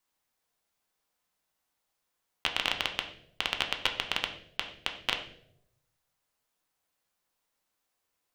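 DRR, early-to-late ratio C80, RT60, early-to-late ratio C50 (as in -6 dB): 3.5 dB, 12.0 dB, 0.75 s, 9.5 dB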